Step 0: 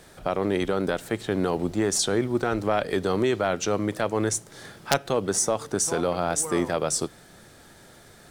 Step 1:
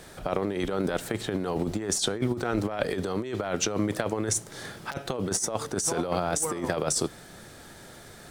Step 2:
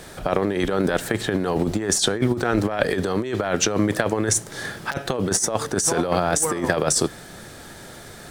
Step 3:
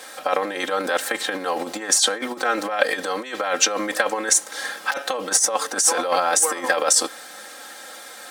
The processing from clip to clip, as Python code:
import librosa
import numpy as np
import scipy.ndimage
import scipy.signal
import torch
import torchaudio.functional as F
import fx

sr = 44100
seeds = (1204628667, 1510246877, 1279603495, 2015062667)

y1 = fx.over_compress(x, sr, threshold_db=-27.0, ratio=-0.5)
y2 = fx.dynamic_eq(y1, sr, hz=1700.0, q=6.4, threshold_db=-54.0, ratio=4.0, max_db=6)
y2 = y2 * 10.0 ** (6.5 / 20.0)
y3 = scipy.signal.sosfilt(scipy.signal.butter(2, 620.0, 'highpass', fs=sr, output='sos'), y2)
y3 = y3 + 0.92 * np.pad(y3, (int(3.8 * sr / 1000.0), 0))[:len(y3)]
y3 = y3 * 10.0 ** (1.5 / 20.0)